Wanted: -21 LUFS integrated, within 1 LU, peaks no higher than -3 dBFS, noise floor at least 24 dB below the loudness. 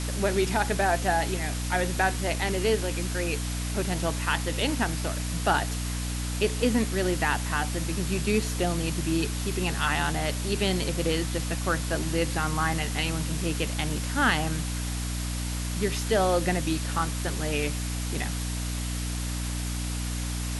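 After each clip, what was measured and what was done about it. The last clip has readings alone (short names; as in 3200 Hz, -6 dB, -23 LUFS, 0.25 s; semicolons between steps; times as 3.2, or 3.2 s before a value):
hum 60 Hz; harmonics up to 300 Hz; hum level -29 dBFS; noise floor -31 dBFS; noise floor target -52 dBFS; loudness -27.5 LUFS; peak -8.5 dBFS; loudness target -21.0 LUFS
-> notches 60/120/180/240/300 Hz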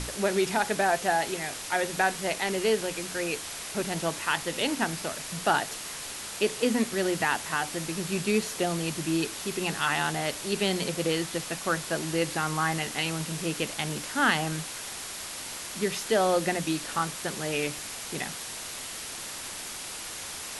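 hum none; noise floor -38 dBFS; noise floor target -53 dBFS
-> noise print and reduce 15 dB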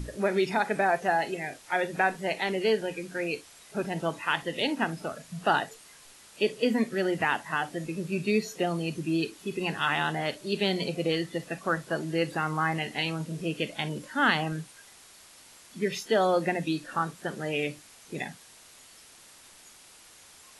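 noise floor -53 dBFS; loudness -29.0 LUFS; peak -9.0 dBFS; loudness target -21.0 LUFS
-> gain +8 dB; limiter -3 dBFS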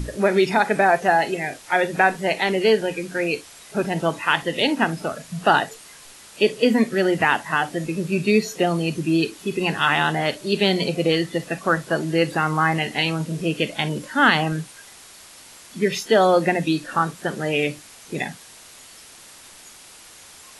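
loudness -21.0 LUFS; peak -3.0 dBFS; noise floor -45 dBFS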